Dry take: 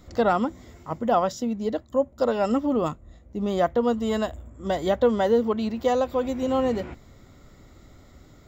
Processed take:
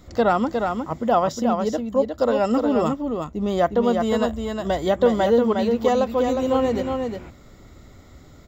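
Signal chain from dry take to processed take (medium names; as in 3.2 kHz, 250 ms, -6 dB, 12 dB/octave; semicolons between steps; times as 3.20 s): delay 359 ms -5 dB; trim +2.5 dB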